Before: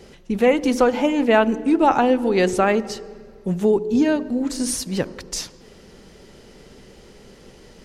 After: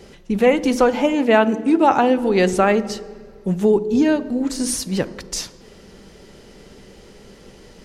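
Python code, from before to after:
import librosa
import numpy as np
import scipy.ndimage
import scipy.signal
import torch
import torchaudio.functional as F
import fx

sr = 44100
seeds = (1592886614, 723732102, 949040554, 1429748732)

y = fx.highpass(x, sr, hz=89.0, slope=12, at=(1.14, 2.18))
y = fx.rev_fdn(y, sr, rt60_s=0.62, lf_ratio=1.0, hf_ratio=0.65, size_ms=30.0, drr_db=16.5)
y = F.gain(torch.from_numpy(y), 1.5).numpy()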